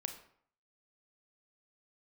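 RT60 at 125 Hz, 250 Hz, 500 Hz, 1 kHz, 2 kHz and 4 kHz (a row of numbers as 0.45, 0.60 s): 0.60, 0.60, 0.60, 0.60, 0.50, 0.40 s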